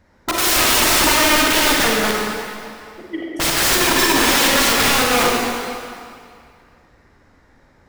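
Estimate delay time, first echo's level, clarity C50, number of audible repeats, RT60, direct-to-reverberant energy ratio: no echo, no echo, -2.0 dB, no echo, 2.3 s, -3.0 dB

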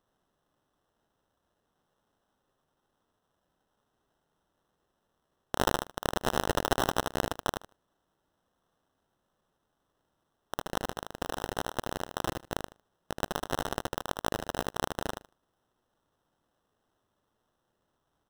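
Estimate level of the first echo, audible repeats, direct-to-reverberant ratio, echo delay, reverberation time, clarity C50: -5.5 dB, 2, no reverb, 77 ms, no reverb, no reverb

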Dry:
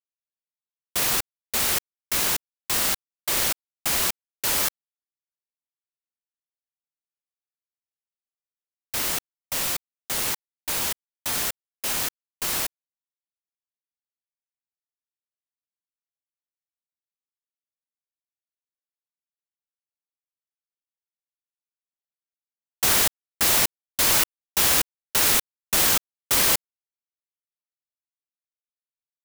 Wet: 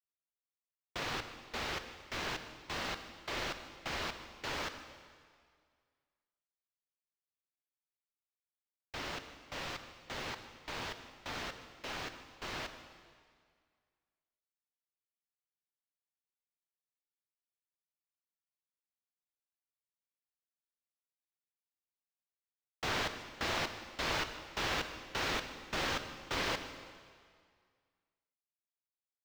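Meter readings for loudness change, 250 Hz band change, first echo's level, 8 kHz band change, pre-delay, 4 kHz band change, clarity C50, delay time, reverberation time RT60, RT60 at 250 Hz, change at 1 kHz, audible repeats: -16.5 dB, -8.0 dB, -20.0 dB, -25.5 dB, 26 ms, -13.0 dB, 9.0 dB, 150 ms, 2.0 s, 1.9 s, -8.0 dB, 1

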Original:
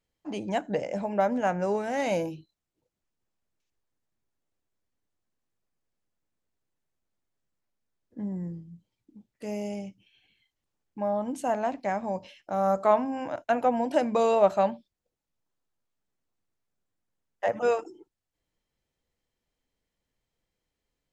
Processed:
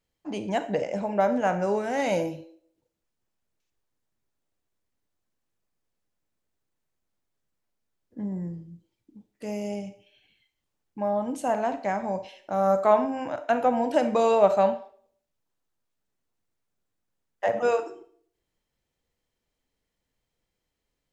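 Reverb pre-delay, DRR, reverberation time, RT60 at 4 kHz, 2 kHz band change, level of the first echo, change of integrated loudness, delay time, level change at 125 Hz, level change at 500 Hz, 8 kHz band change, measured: 31 ms, 10.0 dB, 0.60 s, 0.45 s, +2.0 dB, no echo, +2.0 dB, no echo, +1.5 dB, +2.5 dB, +2.0 dB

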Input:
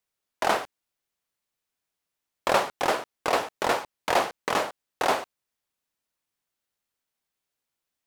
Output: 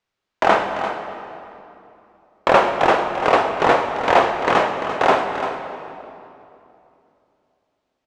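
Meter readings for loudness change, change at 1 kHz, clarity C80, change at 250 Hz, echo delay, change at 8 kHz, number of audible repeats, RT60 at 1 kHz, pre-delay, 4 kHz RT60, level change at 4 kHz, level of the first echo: +8.5 dB, +10.0 dB, 5.5 dB, +10.5 dB, 343 ms, no reading, 1, 2.7 s, 6 ms, 2.0 s, +4.0 dB, -10.5 dB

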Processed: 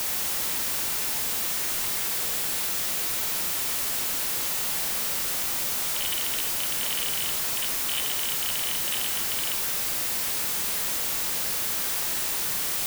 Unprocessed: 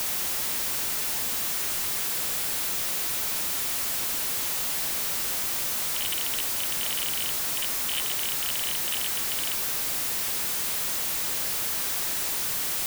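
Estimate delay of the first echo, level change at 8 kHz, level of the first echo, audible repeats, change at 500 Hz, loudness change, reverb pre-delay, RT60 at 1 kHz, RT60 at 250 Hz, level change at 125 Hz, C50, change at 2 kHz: no echo, +0.5 dB, no echo, no echo, +1.0 dB, +0.5 dB, 16 ms, 1.2 s, 1.2 s, +1.0 dB, 8.5 dB, +1.0 dB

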